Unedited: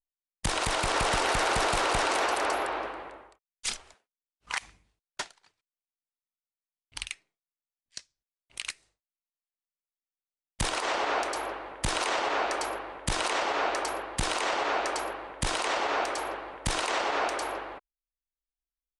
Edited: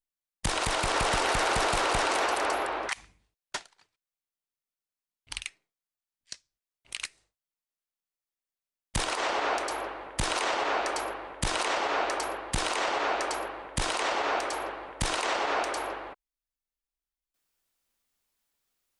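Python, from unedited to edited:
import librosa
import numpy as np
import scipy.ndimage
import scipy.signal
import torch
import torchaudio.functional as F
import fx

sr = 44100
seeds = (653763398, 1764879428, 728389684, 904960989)

y = fx.edit(x, sr, fx.cut(start_s=2.89, length_s=1.65), tone=tone)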